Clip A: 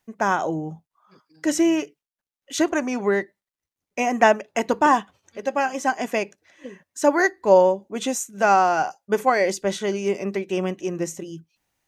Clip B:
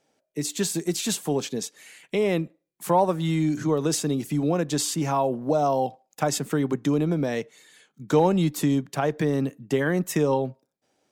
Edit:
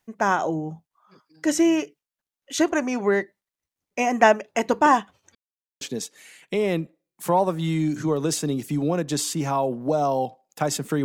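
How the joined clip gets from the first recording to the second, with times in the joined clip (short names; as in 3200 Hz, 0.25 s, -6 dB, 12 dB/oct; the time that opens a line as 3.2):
clip A
5.35–5.81 mute
5.81 switch to clip B from 1.42 s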